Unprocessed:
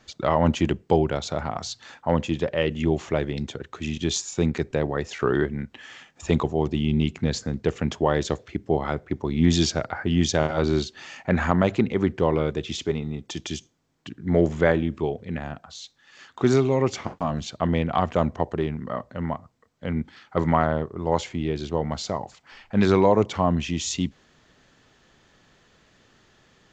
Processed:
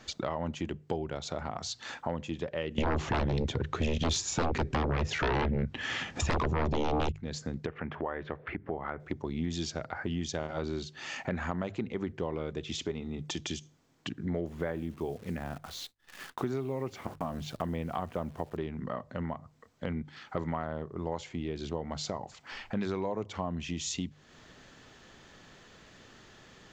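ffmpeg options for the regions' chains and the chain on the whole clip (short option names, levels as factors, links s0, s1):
-filter_complex "[0:a]asettb=1/sr,asplit=3[s0][s1][s2];[s0]atrim=end=2.784[s3];[s1]atrim=start=2.78:end=7.12,asetpts=PTS-STARTPTS,afade=t=in:d=0.004:c=qsin,afade=t=out:st=4.336:d=0.004:c=qsin,equalizer=f=72:w=0.4:g=11,aeval=exprs='0.708*sin(PI/2*6.31*val(0)/0.708)':c=same,lowpass=6300[s4];[s2]atrim=start=7.116[s5];[s3][s4]acrossfade=d=0.004:c1=hsin:c2=qsin[s6];[s6][s5]acrossfade=d=0.004:c1=qsin:c2=hsin,asettb=1/sr,asplit=3[s7][s8][s9];[s7]atrim=end=7.664[s10];[s8]atrim=start=7.66:end=9,asetpts=PTS-STARTPTS,afade=t=in:d=0.004:c=qsin,afade=t=out:st=1.336:d=0.004:c=qsin,lowpass=f=1800:w=0.5412,lowpass=f=1800:w=1.3066,acompressor=mode=upward:threshold=0.0708:ratio=2.5:attack=3.2:release=140:knee=2.83:detection=peak,tiltshelf=f=1200:g=-7.5[s11];[s9]atrim=start=8.996[s12];[s10][s11]acrossfade=d=0.004:c1=hsin:c2=qsin[s13];[s13][s12]acrossfade=d=0.004:c1=qsin:c2=hsin,asettb=1/sr,asplit=3[s14][s15][s16];[s14]atrim=end=14.464[s17];[s15]atrim=start=14.46:end=18.57,asetpts=PTS-STARTPTS,afade=t=in:d=0.004:c=qsin,afade=t=out:st=4.106:d=0.004:c=qsin,lowpass=f=2600:p=1,acrusher=bits=9:dc=4:mix=0:aa=0.000001,agate=range=0.0224:threshold=0.00141:ratio=3:release=100:detection=peak[s18];[s16]atrim=start=18.566[s19];[s17][s18]acrossfade=d=0.004:c1=hsin:c2=qsin[s20];[s20][s19]acrossfade=d=0.004:c1=qsin:c2=hsin,bandreject=f=50:t=h:w=6,bandreject=f=100:t=h:w=6,bandreject=f=150:t=h:w=6,acompressor=threshold=0.0126:ratio=4,volume=1.58"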